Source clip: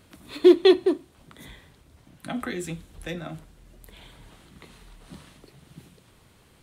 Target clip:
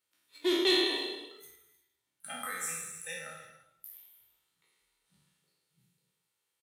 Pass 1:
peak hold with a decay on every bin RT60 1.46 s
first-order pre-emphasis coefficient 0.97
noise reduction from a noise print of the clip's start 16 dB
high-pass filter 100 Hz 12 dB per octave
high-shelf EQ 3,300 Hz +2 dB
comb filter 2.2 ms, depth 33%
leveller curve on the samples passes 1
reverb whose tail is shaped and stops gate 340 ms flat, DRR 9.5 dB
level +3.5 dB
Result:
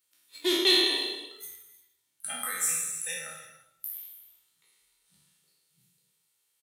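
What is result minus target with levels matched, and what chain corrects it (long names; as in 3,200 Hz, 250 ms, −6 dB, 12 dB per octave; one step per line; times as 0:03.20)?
8,000 Hz band +5.5 dB
peak hold with a decay on every bin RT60 1.46 s
first-order pre-emphasis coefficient 0.97
noise reduction from a noise print of the clip's start 16 dB
high-pass filter 100 Hz 12 dB per octave
high-shelf EQ 3,300 Hz −9 dB
comb filter 2.2 ms, depth 33%
leveller curve on the samples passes 1
reverb whose tail is shaped and stops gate 340 ms flat, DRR 9.5 dB
level +3.5 dB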